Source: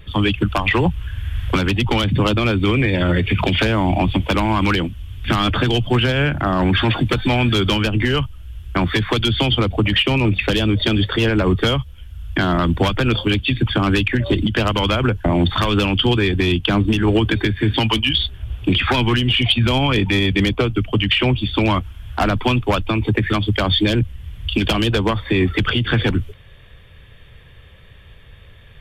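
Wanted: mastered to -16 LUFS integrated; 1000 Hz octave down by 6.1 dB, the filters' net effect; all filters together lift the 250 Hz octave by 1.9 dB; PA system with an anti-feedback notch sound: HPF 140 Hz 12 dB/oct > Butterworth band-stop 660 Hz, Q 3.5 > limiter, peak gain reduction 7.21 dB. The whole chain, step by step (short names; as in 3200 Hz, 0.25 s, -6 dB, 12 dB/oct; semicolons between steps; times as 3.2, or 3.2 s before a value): HPF 140 Hz 12 dB/oct; Butterworth band-stop 660 Hz, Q 3.5; bell 250 Hz +3.5 dB; bell 1000 Hz -7 dB; gain +5.5 dB; limiter -6.5 dBFS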